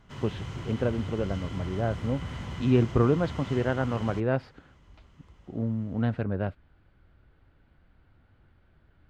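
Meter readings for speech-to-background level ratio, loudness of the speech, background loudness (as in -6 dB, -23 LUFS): 9.5 dB, -29.0 LUFS, -38.5 LUFS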